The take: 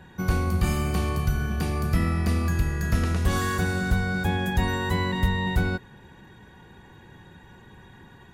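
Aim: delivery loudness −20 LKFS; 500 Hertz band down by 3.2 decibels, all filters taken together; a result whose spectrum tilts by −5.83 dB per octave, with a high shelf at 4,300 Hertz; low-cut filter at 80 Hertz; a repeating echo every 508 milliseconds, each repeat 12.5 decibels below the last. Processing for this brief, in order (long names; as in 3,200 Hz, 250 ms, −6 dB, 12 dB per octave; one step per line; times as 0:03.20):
high-pass filter 80 Hz
parametric band 500 Hz −4.5 dB
high-shelf EQ 4,300 Hz −8.5 dB
repeating echo 508 ms, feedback 24%, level −12.5 dB
level +7.5 dB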